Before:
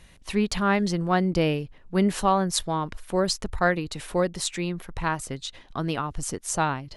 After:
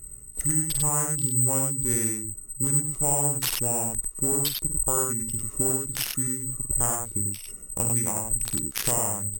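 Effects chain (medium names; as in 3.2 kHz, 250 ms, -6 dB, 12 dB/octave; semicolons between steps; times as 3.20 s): local Wiener filter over 41 samples; in parallel at -2 dB: peak limiter -16.5 dBFS, peak gain reduction 11 dB; on the sum: compression 5:1, threshold -28 dBFS, peak gain reduction 13.5 dB; on a send: early reflections 36 ms -7.5 dB, 72 ms -3.5 dB; on the sum: careless resampling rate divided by 4×, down none, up zero stuff; speed mistake 45 rpm record played at 33 rpm; trim -1.5 dB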